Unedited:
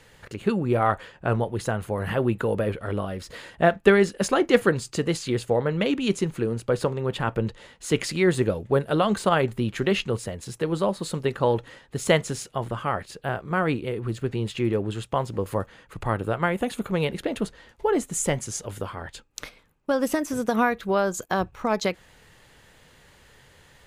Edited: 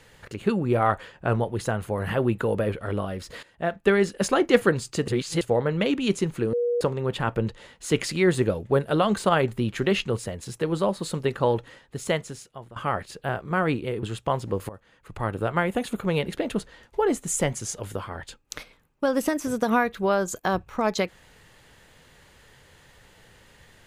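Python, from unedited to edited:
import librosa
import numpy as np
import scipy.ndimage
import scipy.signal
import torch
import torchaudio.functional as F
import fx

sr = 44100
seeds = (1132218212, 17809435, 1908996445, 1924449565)

y = fx.edit(x, sr, fx.fade_in_from(start_s=3.43, length_s=0.77, floor_db=-16.5),
    fx.reverse_span(start_s=5.08, length_s=0.33),
    fx.bleep(start_s=6.53, length_s=0.28, hz=480.0, db=-21.0),
    fx.fade_out_to(start_s=11.39, length_s=1.37, floor_db=-17.5),
    fx.cut(start_s=14.03, length_s=0.86),
    fx.fade_in_from(start_s=15.55, length_s=0.79, floor_db=-19.0), tone=tone)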